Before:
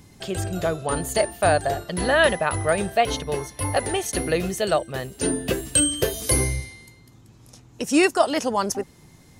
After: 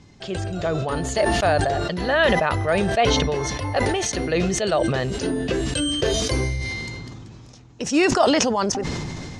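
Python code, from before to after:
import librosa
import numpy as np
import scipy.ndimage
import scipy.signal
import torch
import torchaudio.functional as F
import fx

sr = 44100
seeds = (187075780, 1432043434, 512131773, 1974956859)

y = scipy.signal.sosfilt(scipy.signal.butter(4, 6400.0, 'lowpass', fs=sr, output='sos'), x)
y = fx.sustainer(y, sr, db_per_s=21.0)
y = F.gain(torch.from_numpy(y), -1.0).numpy()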